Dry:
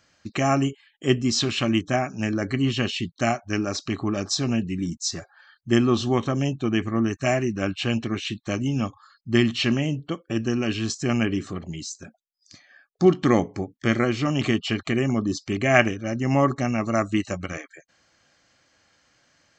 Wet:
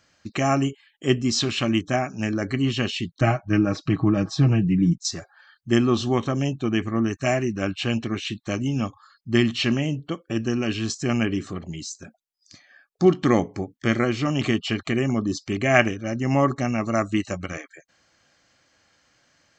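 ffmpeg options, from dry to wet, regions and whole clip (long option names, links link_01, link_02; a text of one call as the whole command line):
ffmpeg -i in.wav -filter_complex "[0:a]asettb=1/sr,asplit=3[link_01][link_02][link_03];[link_01]atrim=end=3.214[link_04];[link_02]atrim=start=3.21:end=5.05,asetpts=PTS-STARTPTS,afade=type=in:duration=0.004:curve=qsin,afade=type=out:start_time=1.836:duration=0.004:curve=qsin,bass=frequency=250:gain=9,treble=frequency=4000:gain=-15,aecho=1:1:6.3:0.67,atrim=end_sample=81144[link_05];[link_03]atrim=start=5.046[link_06];[link_04][link_05]acrossfade=duration=0.004:curve1=hsin:curve2=qsin[link_07];[link_07][link_06]acrossfade=duration=0.004:curve1=qsin:curve2=hsin" out.wav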